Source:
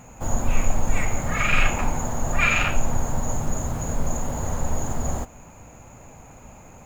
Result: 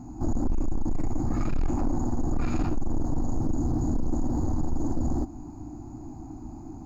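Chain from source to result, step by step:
drawn EQ curve 110 Hz 0 dB, 190 Hz −4 dB, 320 Hz +14 dB, 510 Hz −26 dB, 740 Hz −4 dB, 2,200 Hz −27 dB, 3,200 Hz −28 dB, 4,700 Hz −5 dB, 7,900 Hz −22 dB
in parallel at −1.5 dB: downward compressor, threshold −26 dBFS, peak gain reduction 13.5 dB
on the sum: soft clipping −19.5 dBFS, distortion −9 dB

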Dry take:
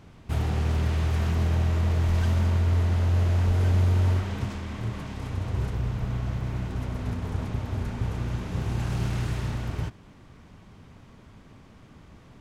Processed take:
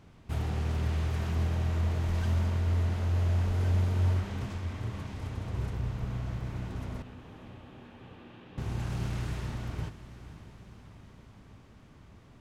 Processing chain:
0:07.02–0:08.58: loudspeaker in its box 390–3,100 Hz, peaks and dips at 430 Hz −7 dB, 650 Hz −9 dB, 970 Hz −9 dB, 1,400 Hz −9 dB, 2,100 Hz −10 dB
feedback delay with all-pass diffusion 502 ms, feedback 64%, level −14 dB
level −5.5 dB

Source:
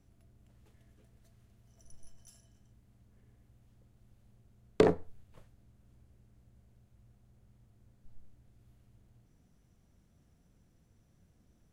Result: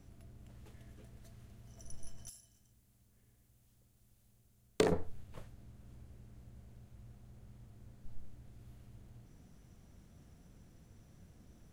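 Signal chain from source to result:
0:02.29–0:04.92: first-order pre-emphasis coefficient 0.8
level +7.5 dB

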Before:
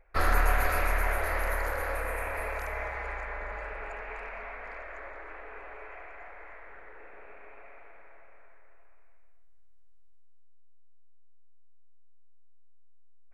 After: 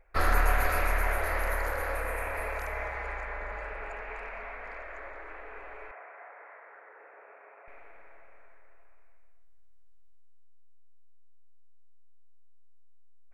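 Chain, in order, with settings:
0:05.91–0:07.68: flat-topped band-pass 930 Hz, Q 0.62

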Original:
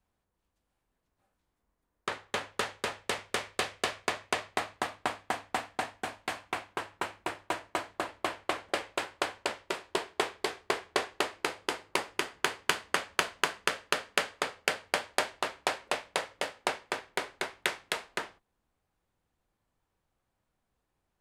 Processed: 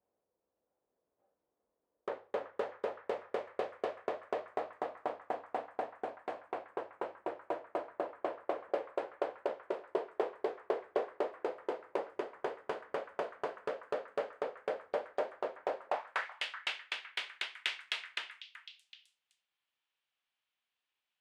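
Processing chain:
soft clipping −20.5 dBFS, distortion −10 dB
band-pass filter sweep 510 Hz → 3,000 Hz, 0:15.79–0:16.44
echo through a band-pass that steps 379 ms, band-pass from 1,500 Hz, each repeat 1.4 octaves, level −9.5 dB
level +5 dB

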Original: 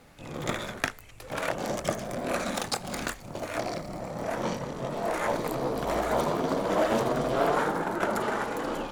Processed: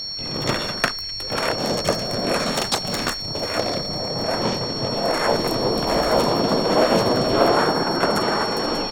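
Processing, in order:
steady tone 5,500 Hz −35 dBFS
pitch-shifted copies added −4 semitones −3 dB
level +6 dB

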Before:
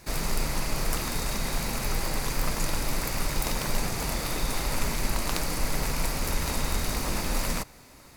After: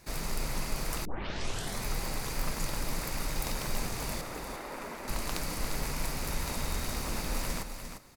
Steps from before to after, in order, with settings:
0:04.21–0:05.08: three-way crossover with the lows and the highs turned down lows −20 dB, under 230 Hz, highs −12 dB, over 2,100 Hz
single-tap delay 350 ms −8 dB
0:01.05: tape start 0.79 s
level −6 dB

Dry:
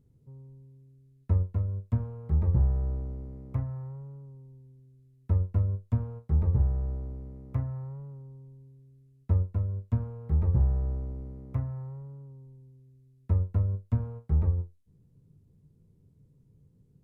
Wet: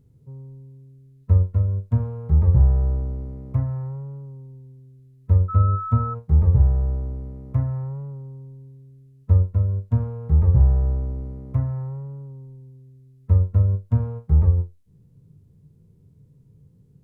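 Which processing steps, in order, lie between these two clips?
harmonic and percussive parts rebalanced harmonic +9 dB
0:05.48–0:06.13: steady tone 1,300 Hz −27 dBFS

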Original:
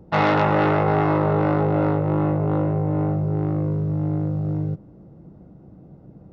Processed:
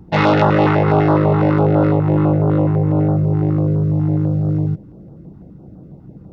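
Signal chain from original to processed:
notch on a step sequencer 12 Hz 550–2,300 Hz
level +7 dB

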